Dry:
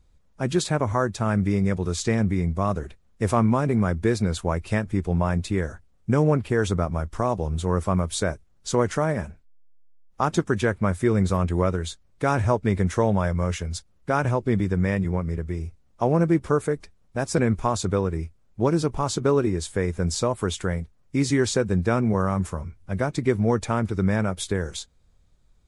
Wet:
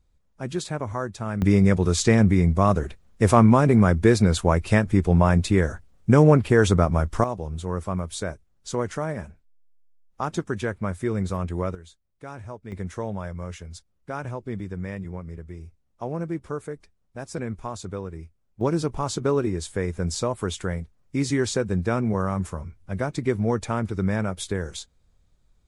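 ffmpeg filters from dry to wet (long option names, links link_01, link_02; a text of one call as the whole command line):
ffmpeg -i in.wav -af "asetnsamples=nb_out_samples=441:pad=0,asendcmd='1.42 volume volume 5dB;7.24 volume volume -5dB;11.75 volume volume -16.5dB;12.72 volume volume -9.5dB;18.61 volume volume -2dB',volume=-6dB" out.wav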